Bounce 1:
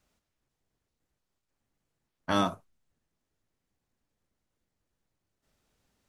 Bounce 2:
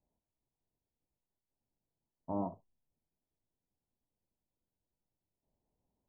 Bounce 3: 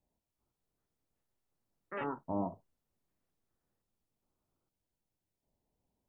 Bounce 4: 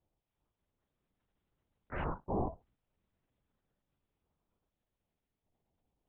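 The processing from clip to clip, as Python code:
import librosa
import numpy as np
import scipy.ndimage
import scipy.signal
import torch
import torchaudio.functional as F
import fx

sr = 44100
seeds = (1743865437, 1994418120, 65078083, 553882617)

y1 = scipy.signal.sosfilt(scipy.signal.cheby1(6, 1.0, 1000.0, 'lowpass', fs=sr, output='sos'), x)
y1 = F.gain(torch.from_numpy(y1), -7.5).numpy()
y2 = fx.echo_pitch(y1, sr, ms=387, semitones=6, count=3, db_per_echo=-3.0)
y2 = F.gain(torch.from_numpy(y2), 1.0).numpy()
y3 = fx.lpc_vocoder(y2, sr, seeds[0], excitation='whisper', order=8)
y3 = F.gain(torch.from_numpy(y3), 1.0).numpy()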